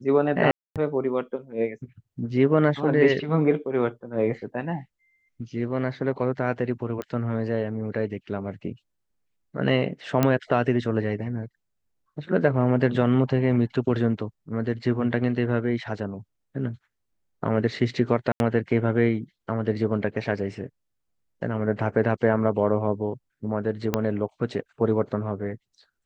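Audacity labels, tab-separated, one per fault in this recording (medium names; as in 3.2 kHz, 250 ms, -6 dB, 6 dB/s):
0.510000	0.760000	dropout 247 ms
7.020000	7.020000	pop -20 dBFS
10.230000	10.230000	pop -7 dBFS
18.320000	18.400000	dropout 81 ms
23.940000	23.940000	pop -8 dBFS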